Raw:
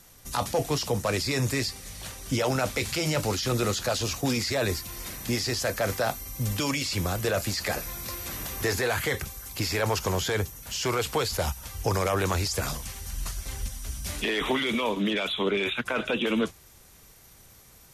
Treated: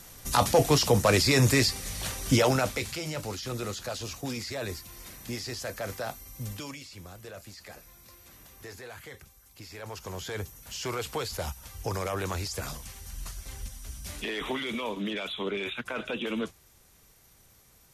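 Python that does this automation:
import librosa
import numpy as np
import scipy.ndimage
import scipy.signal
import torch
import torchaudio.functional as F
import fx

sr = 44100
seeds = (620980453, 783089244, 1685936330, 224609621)

y = fx.gain(x, sr, db=fx.line((2.34, 5.0), (3.05, -8.0), (6.47, -8.0), (6.91, -17.5), (9.66, -17.5), (10.51, -6.0)))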